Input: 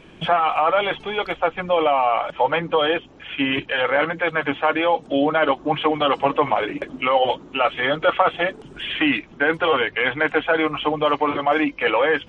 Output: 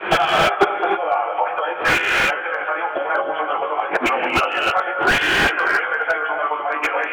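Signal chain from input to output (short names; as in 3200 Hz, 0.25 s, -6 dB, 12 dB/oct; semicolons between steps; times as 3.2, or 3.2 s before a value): expander -42 dBFS; three-band isolator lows -18 dB, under 510 Hz, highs -20 dB, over 2700 Hz; notches 60/120/180/240/300 Hz; on a send: flutter echo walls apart 3.4 m, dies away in 0.28 s; on the sum: flipped gate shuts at -21 dBFS, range -33 dB; in parallel at +1.5 dB: pump 141 bpm, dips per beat 1, -15 dB, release 0.121 s; on the sum: plain phase-vocoder stretch 0.58×; speaker cabinet 120–3500 Hz, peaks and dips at 150 Hz -9 dB, 240 Hz -5 dB, 350 Hz +7 dB, 750 Hz +5 dB, 1400 Hz +8 dB; non-linear reverb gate 0.34 s rising, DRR 3.5 dB; maximiser +23.5 dB; slew limiter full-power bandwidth 310 Hz; gain +1 dB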